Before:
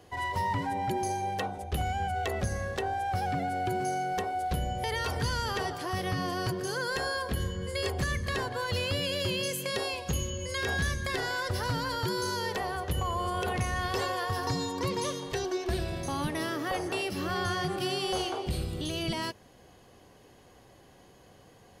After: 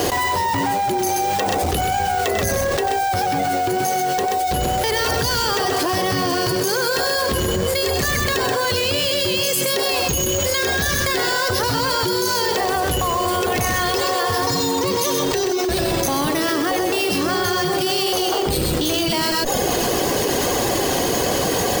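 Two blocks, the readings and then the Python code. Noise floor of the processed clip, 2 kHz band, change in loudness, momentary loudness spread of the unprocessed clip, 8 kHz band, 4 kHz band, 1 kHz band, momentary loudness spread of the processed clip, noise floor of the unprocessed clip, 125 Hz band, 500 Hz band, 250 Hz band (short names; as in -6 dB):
-21 dBFS, +11.0 dB, +12.5 dB, 3 LU, +17.5 dB, +14.0 dB, +11.5 dB, 2 LU, -57 dBFS, +6.5 dB, +13.5 dB, +12.5 dB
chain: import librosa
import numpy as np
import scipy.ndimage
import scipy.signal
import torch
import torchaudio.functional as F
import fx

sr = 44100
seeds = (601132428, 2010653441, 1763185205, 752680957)

p1 = fx.schmitt(x, sr, flips_db=-43.0)
p2 = x + (p1 * librosa.db_to_amplitude(-7.5))
p3 = np.repeat(scipy.signal.resample_poly(p2, 1, 2), 2)[:len(p2)]
p4 = fx.dereverb_blind(p3, sr, rt60_s=0.54)
p5 = fx.bass_treble(p4, sr, bass_db=-6, treble_db=9)
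p6 = fx.wow_flutter(p5, sr, seeds[0], rate_hz=2.1, depth_cents=20.0)
p7 = fx.peak_eq(p6, sr, hz=360.0, db=4.5, octaves=1.7)
p8 = fx.echo_multitap(p7, sr, ms=(95, 130), db=(-10.5, -7.0))
p9 = fx.env_flatten(p8, sr, amount_pct=100)
y = p9 * librosa.db_to_amplitude(2.5)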